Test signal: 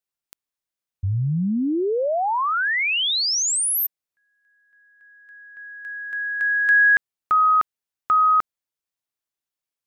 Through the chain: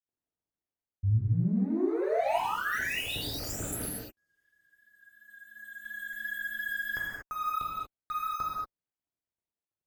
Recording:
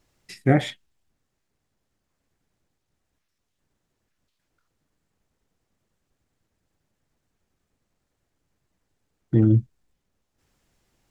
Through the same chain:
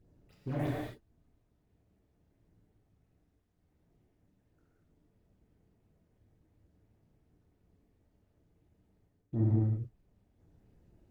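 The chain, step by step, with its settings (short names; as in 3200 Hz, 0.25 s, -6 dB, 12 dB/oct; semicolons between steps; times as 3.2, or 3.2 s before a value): median filter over 41 samples; dynamic EQ 5100 Hz, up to -5 dB, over -49 dBFS, Q 0.81; reverse; compressor 6:1, threshold -36 dBFS; reverse; tube stage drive 29 dB, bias 0.35; phaser stages 8, 2.9 Hz, lowest notch 150–4000 Hz; non-linear reverb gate 0.26 s flat, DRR -5 dB; gain +4.5 dB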